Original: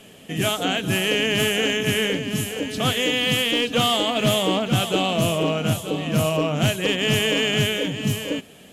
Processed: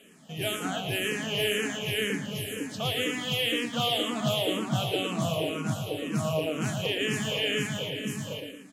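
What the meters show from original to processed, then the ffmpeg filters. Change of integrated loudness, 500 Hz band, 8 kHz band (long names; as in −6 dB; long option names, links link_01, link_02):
−7.5 dB, −7.5 dB, −8.0 dB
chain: -filter_complex "[0:a]highpass=85,asplit=2[link_01][link_02];[link_02]aecho=0:1:113|226|339|452|565|678:0.501|0.231|0.106|0.0488|0.0224|0.0103[link_03];[link_01][link_03]amix=inputs=2:normalize=0,asplit=2[link_04][link_05];[link_05]afreqshift=-2[link_06];[link_04][link_06]amix=inputs=2:normalize=1,volume=-6dB"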